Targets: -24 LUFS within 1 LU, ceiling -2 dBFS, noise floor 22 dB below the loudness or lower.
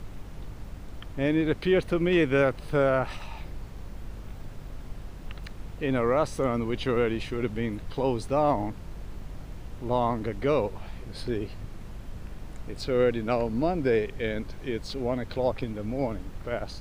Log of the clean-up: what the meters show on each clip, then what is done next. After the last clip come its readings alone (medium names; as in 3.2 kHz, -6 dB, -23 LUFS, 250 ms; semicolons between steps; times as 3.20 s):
hum 50 Hz; highest harmonic 200 Hz; hum level -43 dBFS; noise floor -42 dBFS; noise floor target -50 dBFS; loudness -27.5 LUFS; peak level -12.0 dBFS; loudness target -24.0 LUFS
-> de-hum 50 Hz, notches 4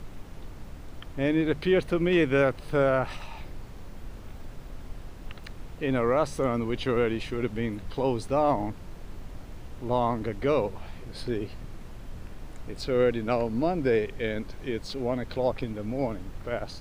hum not found; noise floor -43 dBFS; noise floor target -50 dBFS
-> noise print and reduce 7 dB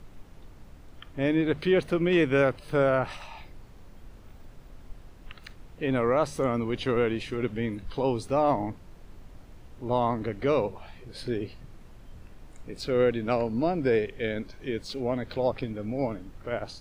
noise floor -49 dBFS; noise floor target -50 dBFS
-> noise print and reduce 6 dB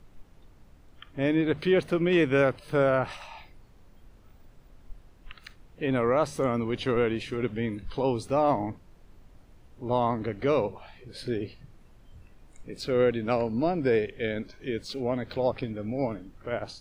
noise floor -55 dBFS; loudness -27.5 LUFS; peak level -12.0 dBFS; loudness target -24.0 LUFS
-> trim +3.5 dB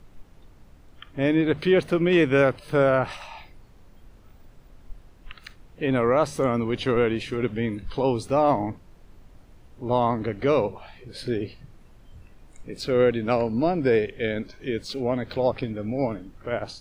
loudness -24.0 LUFS; peak level -8.5 dBFS; noise floor -52 dBFS